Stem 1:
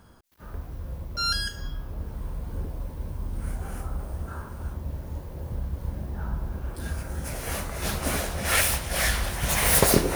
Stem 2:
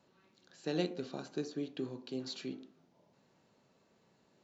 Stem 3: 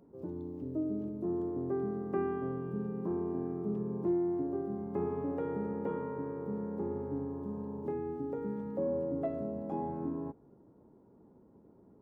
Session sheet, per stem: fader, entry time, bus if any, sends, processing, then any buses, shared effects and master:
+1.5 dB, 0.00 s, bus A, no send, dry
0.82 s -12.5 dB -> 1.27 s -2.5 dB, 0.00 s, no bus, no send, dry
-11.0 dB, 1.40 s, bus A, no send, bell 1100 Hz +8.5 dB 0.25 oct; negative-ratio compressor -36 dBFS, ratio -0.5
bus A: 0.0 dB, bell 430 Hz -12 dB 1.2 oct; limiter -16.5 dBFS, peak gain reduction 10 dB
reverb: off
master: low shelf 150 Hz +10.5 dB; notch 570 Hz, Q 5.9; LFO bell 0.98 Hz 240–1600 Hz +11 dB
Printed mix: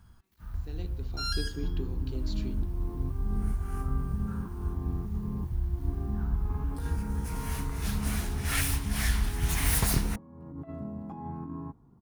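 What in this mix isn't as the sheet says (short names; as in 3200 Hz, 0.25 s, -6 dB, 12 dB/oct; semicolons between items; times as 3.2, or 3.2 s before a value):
stem 1 +1.5 dB -> -7.5 dB; stem 3 -11.0 dB -> 0.0 dB; master: missing LFO bell 0.98 Hz 240–1600 Hz +11 dB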